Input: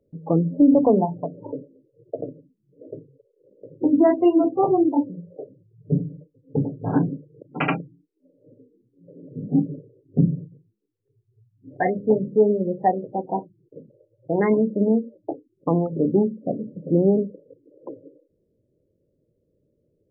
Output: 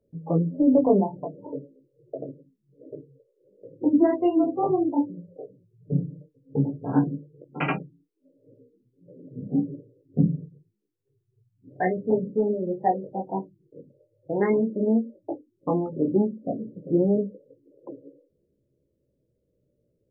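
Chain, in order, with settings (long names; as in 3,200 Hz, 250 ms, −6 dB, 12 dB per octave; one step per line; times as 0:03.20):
multi-voice chorus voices 2, 0.11 Hz, delay 18 ms, depth 3.9 ms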